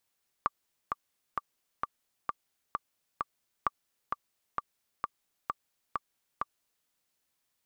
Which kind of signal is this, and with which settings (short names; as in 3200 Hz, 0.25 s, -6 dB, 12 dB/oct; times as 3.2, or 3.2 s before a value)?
metronome 131 bpm, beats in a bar 7, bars 2, 1170 Hz, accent 4.5 dB -13 dBFS